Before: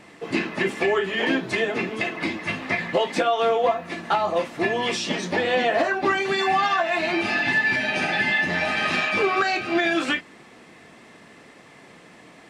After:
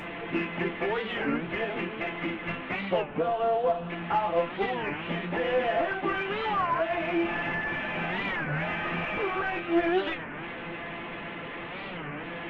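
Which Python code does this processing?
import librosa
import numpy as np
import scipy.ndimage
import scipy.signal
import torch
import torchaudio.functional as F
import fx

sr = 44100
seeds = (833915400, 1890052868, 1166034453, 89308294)

p1 = fx.delta_mod(x, sr, bps=16000, step_db=-26.0)
p2 = fx.peak_eq(p1, sr, hz=2100.0, db=-13.0, octaves=0.76, at=(3.04, 3.9))
p3 = fx.comb_fb(p2, sr, f0_hz=170.0, decay_s=0.25, harmonics='all', damping=0.0, mix_pct=80)
p4 = 10.0 ** (-27.0 / 20.0) * np.tanh(p3 / 10.0 ** (-27.0 / 20.0))
p5 = p3 + (p4 * 10.0 ** (-6.5 / 20.0))
y = fx.record_warp(p5, sr, rpm=33.33, depth_cents=250.0)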